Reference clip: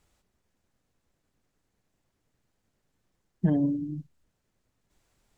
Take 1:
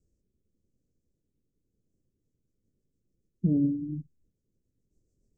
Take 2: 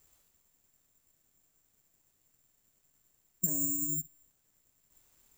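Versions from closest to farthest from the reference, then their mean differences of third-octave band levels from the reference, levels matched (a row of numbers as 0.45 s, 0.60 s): 1, 2; 2.5 dB, 10.0 dB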